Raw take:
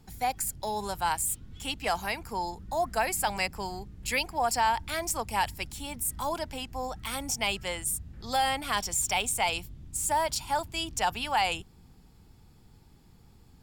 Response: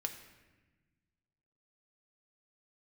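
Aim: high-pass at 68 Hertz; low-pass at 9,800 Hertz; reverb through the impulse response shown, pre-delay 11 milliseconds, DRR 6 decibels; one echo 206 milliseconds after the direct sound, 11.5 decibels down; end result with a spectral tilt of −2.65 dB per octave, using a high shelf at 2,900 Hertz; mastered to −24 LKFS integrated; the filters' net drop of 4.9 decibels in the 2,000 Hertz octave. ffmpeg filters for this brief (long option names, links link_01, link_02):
-filter_complex "[0:a]highpass=68,lowpass=9800,equalizer=frequency=2000:width_type=o:gain=-4.5,highshelf=frequency=2900:gain=-4,aecho=1:1:206:0.266,asplit=2[link_01][link_02];[1:a]atrim=start_sample=2205,adelay=11[link_03];[link_02][link_03]afir=irnorm=-1:irlink=0,volume=-6dB[link_04];[link_01][link_04]amix=inputs=2:normalize=0,volume=7.5dB"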